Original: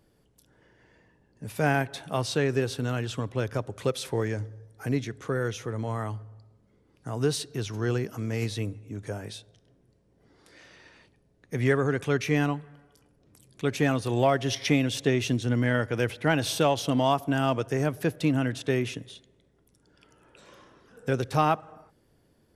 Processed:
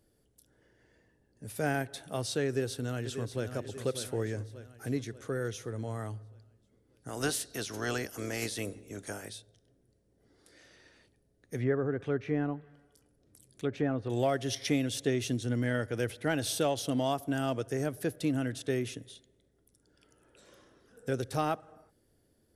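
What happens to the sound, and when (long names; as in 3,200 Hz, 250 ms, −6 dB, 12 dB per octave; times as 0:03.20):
0:02.46–0:03.51: delay throw 590 ms, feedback 50%, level −9 dB
0:07.08–0:09.28: ceiling on every frequency bin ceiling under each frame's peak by 19 dB
0:11.57–0:14.10: treble cut that deepens with the level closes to 1,400 Hz, closed at −22 dBFS
whole clip: graphic EQ with 15 bands 160 Hz −5 dB, 1,000 Hz −8 dB, 2,500 Hz −5 dB, 10,000 Hz +6 dB; level −4 dB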